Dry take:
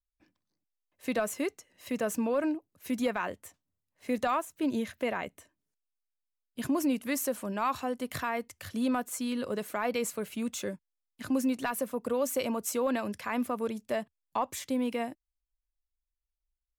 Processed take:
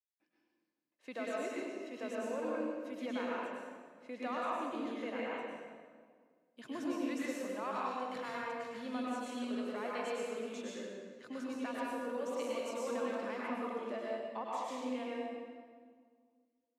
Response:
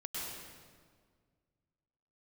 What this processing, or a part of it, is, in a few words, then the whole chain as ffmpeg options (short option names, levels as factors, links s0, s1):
supermarket ceiling speaker: -filter_complex "[0:a]highpass=290,lowpass=5300[s0];[1:a]atrim=start_sample=2205[s1];[s0][s1]afir=irnorm=-1:irlink=0,volume=0.447"